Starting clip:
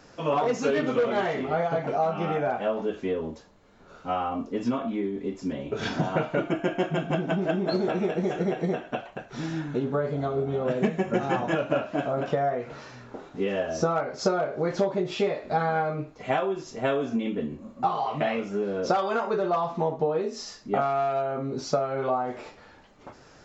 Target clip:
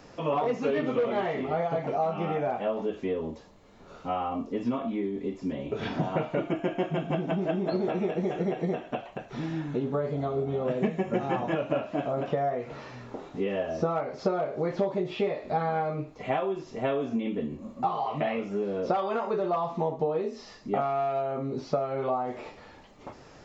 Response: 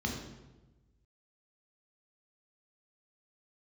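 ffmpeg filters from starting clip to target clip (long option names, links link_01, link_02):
-filter_complex "[0:a]asplit=2[link_01][link_02];[link_02]acompressor=threshold=-37dB:ratio=6,volume=1dB[link_03];[link_01][link_03]amix=inputs=2:normalize=0,equalizer=frequency=1500:width_type=o:width=0.29:gain=-7,acrossover=split=3600[link_04][link_05];[link_05]acompressor=threshold=-58dB:ratio=4:attack=1:release=60[link_06];[link_04][link_06]amix=inputs=2:normalize=0,volume=-4dB"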